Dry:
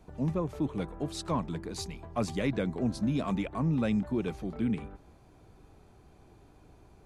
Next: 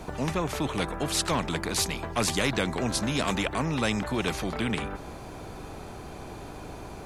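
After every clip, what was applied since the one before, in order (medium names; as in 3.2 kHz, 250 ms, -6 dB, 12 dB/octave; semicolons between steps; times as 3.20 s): spectrum-flattening compressor 2:1; trim +8 dB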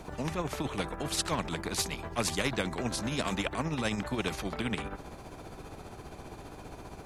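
tremolo 15 Hz, depth 49%; trim -2.5 dB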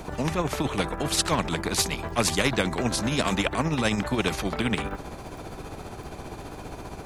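crackle 26 per s -47 dBFS; trim +7 dB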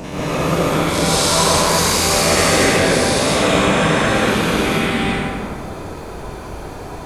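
every event in the spectrogram widened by 480 ms; plate-style reverb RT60 2 s, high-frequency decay 0.55×, pre-delay 115 ms, DRR -9 dB; trim -8 dB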